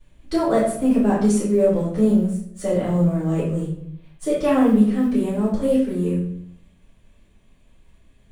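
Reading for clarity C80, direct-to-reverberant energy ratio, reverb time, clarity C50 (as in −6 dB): 7.0 dB, −11.5 dB, 0.65 s, 3.0 dB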